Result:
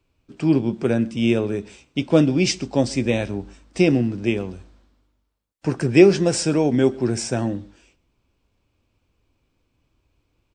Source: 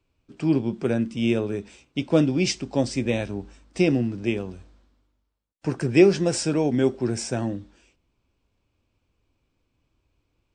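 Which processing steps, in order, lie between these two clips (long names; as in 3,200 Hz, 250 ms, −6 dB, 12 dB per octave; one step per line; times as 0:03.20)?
slap from a distant wall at 22 metres, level −24 dB
level +3.5 dB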